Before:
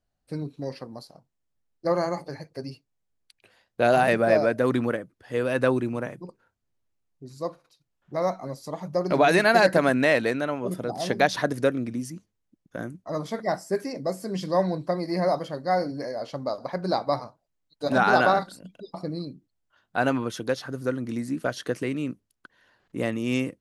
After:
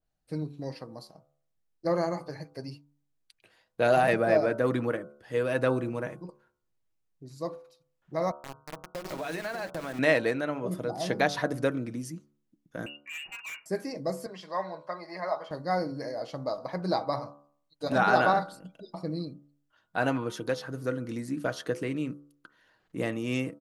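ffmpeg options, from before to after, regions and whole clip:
-filter_complex "[0:a]asettb=1/sr,asplit=3[s0][s1][s2];[s0]atrim=end=8.314[s3];[s1]atrim=start=8.31:end=9.99,asetpts=PTS-STARTPTS,afade=t=in:d=0.004:c=qsin,afade=t=out:st=1.676:d=0.004:c=qsin,aeval=exprs='val(0)*gte(abs(val(0)),0.0501)':c=same,acompressor=threshold=0.0355:ratio=5:attack=3.2:release=140:knee=1:detection=peak,bandreject=f=60:t=h:w=6,bandreject=f=120:t=h:w=6,bandreject=f=180:t=h:w=6,bandreject=f=240:t=h:w=6,bandreject=f=300:t=h:w=6,bandreject=f=360:t=h:w=6,bandreject=f=420:t=h:w=6,bandreject=f=480:t=h:w=6[s4];[s2]atrim=start=9.986[s5];[s3][s4]acrossfade=d=0.004:c1=hsin:c2=qsin[s6];[s6][s5]acrossfade=d=0.004:c1=qsin:c2=hsin,asettb=1/sr,asplit=3[s7][s8][s9];[s7]atrim=end=12.864[s10];[s8]atrim=start=12.86:end=13.66,asetpts=PTS-STARTPTS,afade=t=in:d=0.004:c=qsin,afade=t=out:st=0.796:d=0.004:c=qsin,lowpass=f=2600:t=q:w=0.5098,lowpass=f=2600:t=q:w=0.6013,lowpass=f=2600:t=q:w=0.9,lowpass=f=2600:t=q:w=2.563,afreqshift=-3000,tiltshelf=f=840:g=5.5,volume=53.1,asoftclip=hard,volume=0.0188[s11];[s9]atrim=start=13.656[s12];[s10][s11]acrossfade=d=0.004:c1=hsin:c2=qsin[s13];[s13][s12]acrossfade=d=0.004:c1=qsin:c2=hsin,asettb=1/sr,asplit=3[s14][s15][s16];[s14]atrim=end=14.264[s17];[s15]atrim=start=14.26:end=15.51,asetpts=PTS-STARTPTS,afade=t=in:d=0.004:c=qsin,afade=t=out:st=1.246:d=0.004:c=qsin,bandpass=f=850:t=q:w=0.99,tiltshelf=f=840:g=-7.5,aecho=1:1:4.8:0.42,atrim=end_sample=55125[s18];[s16]atrim=start=15.506[s19];[s17][s18]acrossfade=d=0.004:c1=hsin:c2=qsin[s20];[s20][s19]acrossfade=d=0.004:c1=qsin:c2=hsin,aecho=1:1:6.3:0.31,bandreject=f=72.16:t=h:w=4,bandreject=f=144.32:t=h:w=4,bandreject=f=216.48:t=h:w=4,bandreject=f=288.64:t=h:w=4,bandreject=f=360.8:t=h:w=4,bandreject=f=432.96:t=h:w=4,bandreject=f=505.12:t=h:w=4,bandreject=f=577.28:t=h:w=4,bandreject=f=649.44:t=h:w=4,bandreject=f=721.6:t=h:w=4,bandreject=f=793.76:t=h:w=4,bandreject=f=865.92:t=h:w=4,bandreject=f=938.08:t=h:w=4,bandreject=f=1010.24:t=h:w=4,bandreject=f=1082.4:t=h:w=4,bandreject=f=1154.56:t=h:w=4,bandreject=f=1226.72:t=h:w=4,bandreject=f=1298.88:t=h:w=4,bandreject=f=1371.04:t=h:w=4,bandreject=f=1443.2:t=h:w=4,bandreject=f=1515.36:t=h:w=4,adynamicequalizer=threshold=0.0126:dfrequency=2300:dqfactor=0.7:tfrequency=2300:tqfactor=0.7:attack=5:release=100:ratio=0.375:range=2:mode=cutabove:tftype=highshelf,volume=0.708"

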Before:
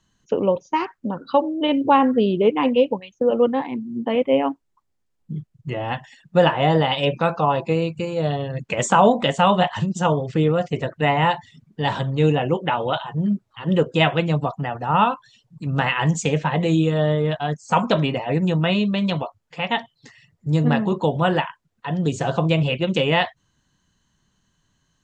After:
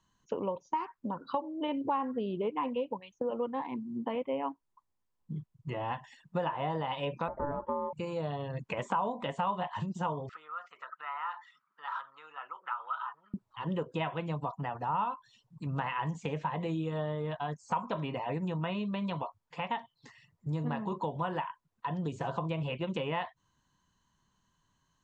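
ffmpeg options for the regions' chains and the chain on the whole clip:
-filter_complex "[0:a]asettb=1/sr,asplit=3[s0][s1][s2];[s0]atrim=end=7.284[s3];[s1]atrim=start=7.28:end=7.93,asetpts=PTS-STARTPTS,afade=t=in:d=0.004:c=qsin,afade=t=out:st=0.646:d=0.004:c=qsin,aeval=exprs='val(0)*sin(2*PI*720*n/s)':c=same,lowpass=f=670:t=q:w=5.2[s4];[s2]atrim=start=7.926[s5];[s3][s4]acrossfade=d=0.004:c1=hsin:c2=qsin[s6];[s6][s5]acrossfade=d=0.004:c1=qsin:c2=hsin,asettb=1/sr,asplit=3[s7][s8][s9];[s7]atrim=end=10.294[s10];[s8]atrim=start=10.29:end=13.34,asetpts=PTS-STARTPTS,afade=t=in:d=0.004:c=qsin,afade=t=out:st=3.046:d=0.004:c=qsin,aemphasis=mode=reproduction:type=75kf,acompressor=threshold=0.0178:ratio=3:attack=3.2:release=140:knee=1:detection=peak,highpass=f=1300:t=q:w=14[s11];[s9]atrim=start=13.336[s12];[s10][s11]acrossfade=d=0.004:c1=hsin:c2=qsin[s13];[s13][s12]acrossfade=d=0.004:c1=qsin:c2=hsin,acrossover=split=3300[s14][s15];[s15]acompressor=threshold=0.00562:ratio=4:attack=1:release=60[s16];[s14][s16]amix=inputs=2:normalize=0,equalizer=f=1000:w=3.3:g=10.5,acompressor=threshold=0.0631:ratio=3,volume=0.376"

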